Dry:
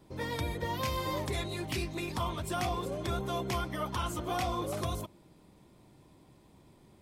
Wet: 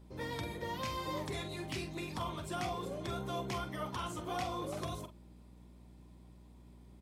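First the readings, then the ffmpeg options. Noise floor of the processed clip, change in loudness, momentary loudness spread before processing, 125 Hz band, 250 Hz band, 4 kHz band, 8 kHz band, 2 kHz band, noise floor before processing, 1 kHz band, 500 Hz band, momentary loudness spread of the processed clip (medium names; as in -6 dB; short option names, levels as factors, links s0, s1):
-57 dBFS, -5.0 dB, 3 LU, -6.0 dB, -4.5 dB, -4.5 dB, -6.0 dB, -4.5 dB, -61 dBFS, -4.5 dB, -4.5 dB, 20 LU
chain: -filter_complex "[0:a]acrossover=split=9800[s0][s1];[s1]acompressor=threshold=0.00126:ratio=4:attack=1:release=60[s2];[s0][s2]amix=inputs=2:normalize=0,highpass=94,aeval=exprs='val(0)+0.00316*(sin(2*PI*60*n/s)+sin(2*PI*2*60*n/s)/2+sin(2*PI*3*60*n/s)/3+sin(2*PI*4*60*n/s)/4+sin(2*PI*5*60*n/s)/5)':c=same,asplit=2[s3][s4];[s4]adelay=45,volume=0.335[s5];[s3][s5]amix=inputs=2:normalize=0,volume=0.562"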